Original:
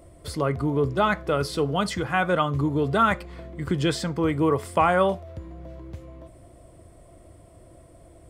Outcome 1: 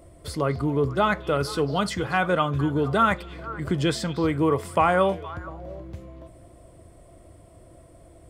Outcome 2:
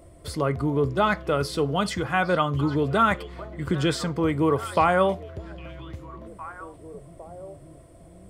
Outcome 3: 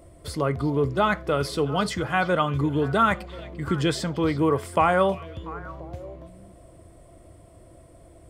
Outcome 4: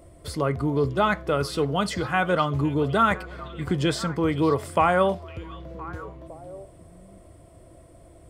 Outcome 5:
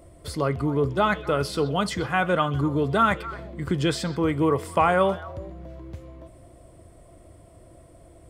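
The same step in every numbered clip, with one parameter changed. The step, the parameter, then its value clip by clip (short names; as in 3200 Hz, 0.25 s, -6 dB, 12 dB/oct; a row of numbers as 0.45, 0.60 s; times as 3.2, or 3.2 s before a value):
delay with a stepping band-pass, time: 0.234, 0.808, 0.344, 0.509, 0.126 s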